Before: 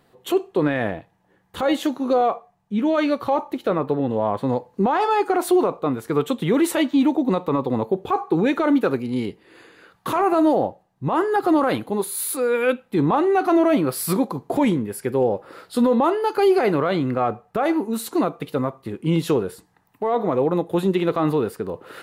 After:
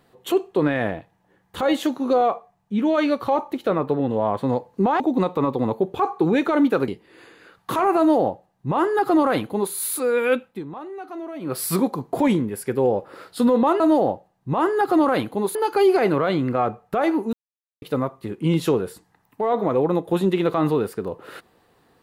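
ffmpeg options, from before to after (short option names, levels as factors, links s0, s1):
-filter_complex "[0:a]asplit=9[s0][s1][s2][s3][s4][s5][s6][s7][s8];[s0]atrim=end=5.002[s9];[s1]atrim=start=7.108:end=8.992[s10];[s2]atrim=start=9.248:end=13,asetpts=PTS-STARTPTS,afade=t=out:st=3.562:d=0.19:silence=0.149624[s11];[s3]atrim=start=13:end=13.77,asetpts=PTS-STARTPTS,volume=0.15[s12];[s4]atrim=start=13.77:end=16.172,asetpts=PTS-STARTPTS,afade=t=in:d=0.19:silence=0.149624[s13];[s5]atrim=start=10.348:end=12.102[s14];[s6]atrim=start=16.168:end=17.95,asetpts=PTS-STARTPTS,afade=t=out:st=1.778:d=0.004:c=hsin[s15];[s7]atrim=start=17.95:end=18.44,asetpts=PTS-STARTPTS,volume=0[s16];[s8]atrim=start=18.44,asetpts=PTS-STARTPTS,afade=t=in:d=0.004:c=hsin[s17];[s9][s10]acrossfade=d=0.004:c1=hsin:c2=hsin[s18];[s11][s12][s13]concat=n=3:v=0:a=1[s19];[s18][s19]acrossfade=d=0.004:c1=hsin:c2=hsin[s20];[s20][s14]acrossfade=d=0.004:c1=hsin:c2=hsin[s21];[s15][s16][s17]concat=n=3:v=0:a=1[s22];[s21][s22]acrossfade=d=0.004:c1=hsin:c2=hsin"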